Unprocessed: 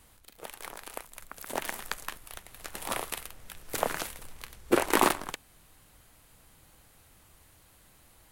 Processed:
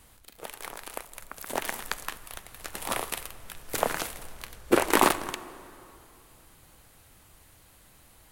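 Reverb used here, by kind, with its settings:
dense smooth reverb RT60 2.8 s, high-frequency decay 0.65×, DRR 15.5 dB
level +2.5 dB

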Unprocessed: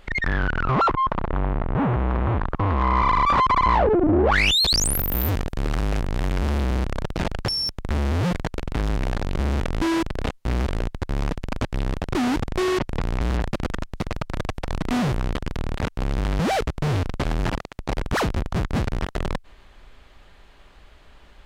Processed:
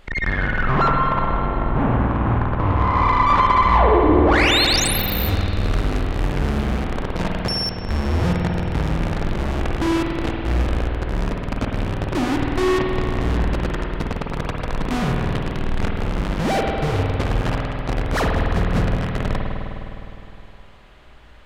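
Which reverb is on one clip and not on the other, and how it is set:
spring reverb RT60 3 s, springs 51 ms, chirp 80 ms, DRR −1 dB

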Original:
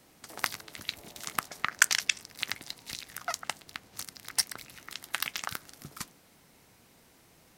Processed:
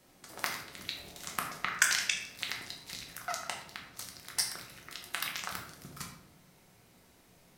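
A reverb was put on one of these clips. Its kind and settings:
rectangular room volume 170 cubic metres, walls mixed, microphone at 1 metre
level −5 dB

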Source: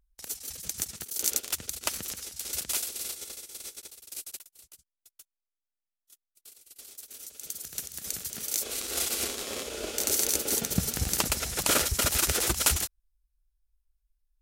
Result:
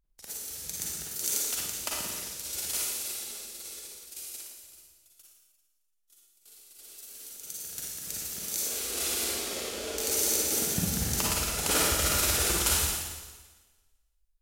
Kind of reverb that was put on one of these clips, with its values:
four-comb reverb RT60 1.3 s, DRR −4.5 dB
level −5.5 dB

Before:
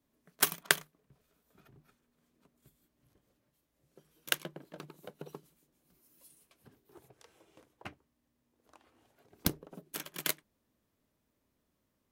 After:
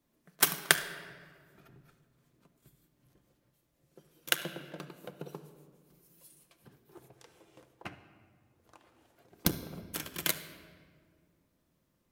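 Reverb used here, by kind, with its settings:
rectangular room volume 2,600 cubic metres, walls mixed, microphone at 0.82 metres
level +2 dB

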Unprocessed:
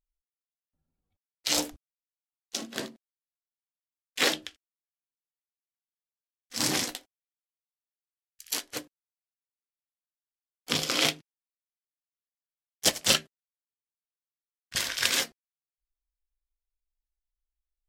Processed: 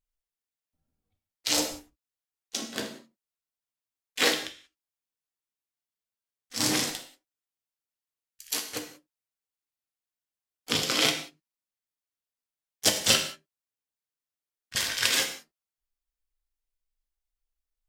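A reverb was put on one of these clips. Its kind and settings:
reverb whose tail is shaped and stops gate 210 ms falling, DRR 4.5 dB

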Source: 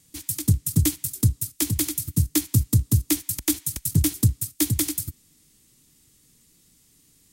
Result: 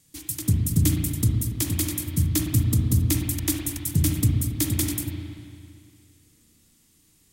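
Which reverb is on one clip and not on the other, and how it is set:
spring reverb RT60 2.3 s, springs 35/57 ms, chirp 75 ms, DRR 0 dB
level −2.5 dB

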